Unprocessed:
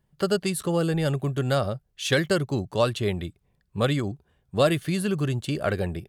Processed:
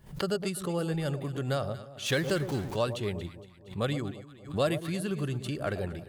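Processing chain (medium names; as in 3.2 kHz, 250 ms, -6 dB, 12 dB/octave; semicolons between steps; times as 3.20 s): 2.06–2.76 s: jump at every zero crossing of -31 dBFS; echo whose repeats swap between lows and highs 116 ms, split 960 Hz, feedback 63%, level -10.5 dB; swell ahead of each attack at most 140 dB/s; trim -7 dB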